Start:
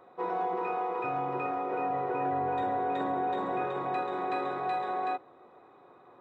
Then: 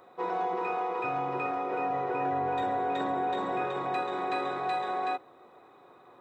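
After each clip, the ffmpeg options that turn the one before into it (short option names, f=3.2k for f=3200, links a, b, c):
-af "highshelf=f=3.1k:g=10"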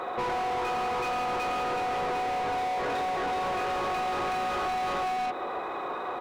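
-filter_complex "[0:a]aecho=1:1:84.55|139.9:0.501|0.398,asplit=2[a][b];[b]highpass=f=720:p=1,volume=33dB,asoftclip=type=tanh:threshold=-18dB[c];[a][c]amix=inputs=2:normalize=0,lowpass=f=2.1k:p=1,volume=-6dB,acompressor=threshold=-27dB:ratio=6,volume=-1dB"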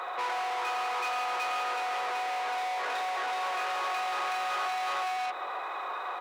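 -af "highpass=870,volume=1.5dB"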